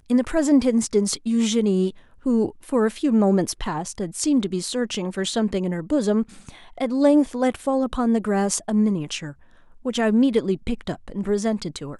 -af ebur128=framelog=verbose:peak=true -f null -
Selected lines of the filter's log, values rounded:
Integrated loudness:
  I:         -22.3 LUFS
  Threshold: -32.5 LUFS
Loudness range:
  LRA:         2.8 LU
  Threshold: -42.7 LUFS
  LRA low:   -24.1 LUFS
  LRA high:  -21.4 LUFS
True peak:
  Peak:       -4.1 dBFS